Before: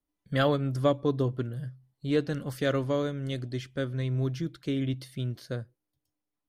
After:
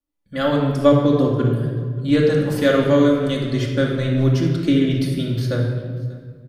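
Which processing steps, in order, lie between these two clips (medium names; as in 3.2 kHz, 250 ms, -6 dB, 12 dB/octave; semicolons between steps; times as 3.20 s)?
level rider gain up to 14 dB; on a send: delay 587 ms -22.5 dB; on the sum: simulated room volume 2000 m³, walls mixed, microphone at 2.4 m; trim -4.5 dB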